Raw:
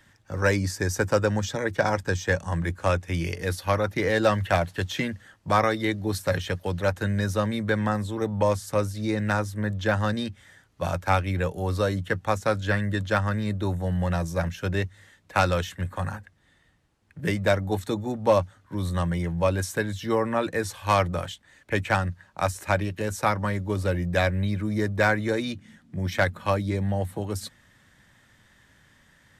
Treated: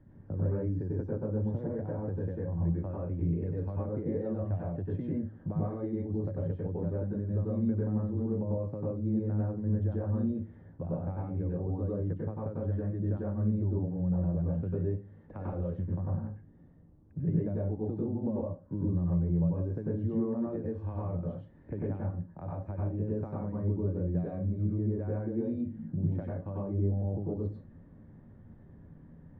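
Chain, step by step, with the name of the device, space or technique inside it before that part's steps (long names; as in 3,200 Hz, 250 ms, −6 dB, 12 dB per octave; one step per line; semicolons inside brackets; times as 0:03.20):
television next door (downward compressor 6 to 1, threshold −38 dBFS, peak gain reduction 21 dB; low-pass filter 350 Hz 12 dB per octave; convolution reverb RT60 0.30 s, pre-delay 91 ms, DRR −4.5 dB)
level +6 dB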